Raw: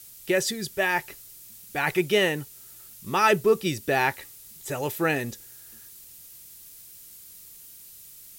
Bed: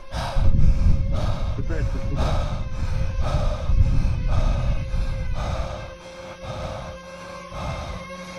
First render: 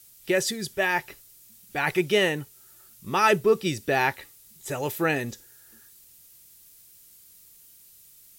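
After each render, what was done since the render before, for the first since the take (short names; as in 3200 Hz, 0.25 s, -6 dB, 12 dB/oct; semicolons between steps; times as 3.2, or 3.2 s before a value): noise print and reduce 6 dB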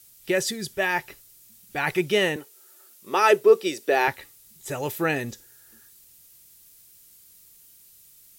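2.36–4.08 resonant high-pass 410 Hz, resonance Q 1.7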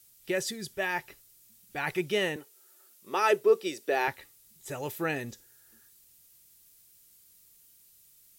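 gain -6.5 dB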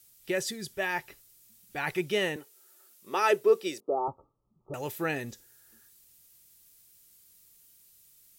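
3.8–4.74 Chebyshev low-pass 1300 Hz, order 10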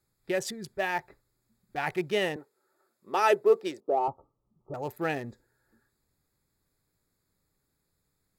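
Wiener smoothing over 15 samples; dynamic EQ 740 Hz, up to +6 dB, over -46 dBFS, Q 2.6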